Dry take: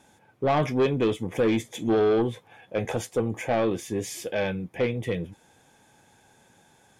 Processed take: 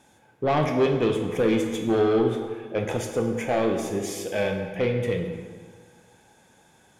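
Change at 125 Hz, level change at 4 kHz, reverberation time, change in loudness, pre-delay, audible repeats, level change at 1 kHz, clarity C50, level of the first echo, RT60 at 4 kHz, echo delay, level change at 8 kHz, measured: +1.5 dB, +1.5 dB, 1.7 s, +1.5 dB, 22 ms, no echo, +1.0 dB, 5.5 dB, no echo, 1.2 s, no echo, +1.0 dB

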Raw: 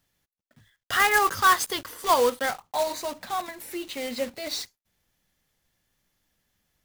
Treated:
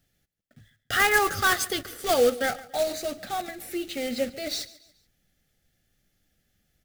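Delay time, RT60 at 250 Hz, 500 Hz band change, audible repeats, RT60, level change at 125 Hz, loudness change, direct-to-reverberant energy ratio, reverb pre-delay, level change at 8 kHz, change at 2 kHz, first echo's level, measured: 142 ms, no reverb, +2.0 dB, 2, no reverb, +5.5 dB, -1.0 dB, no reverb, no reverb, 0.0 dB, 0.0 dB, -19.0 dB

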